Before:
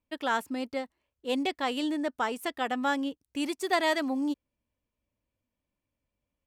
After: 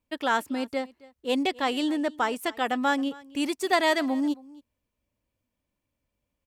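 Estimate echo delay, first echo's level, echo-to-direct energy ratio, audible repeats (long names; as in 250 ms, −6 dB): 270 ms, −22.0 dB, −22.0 dB, 1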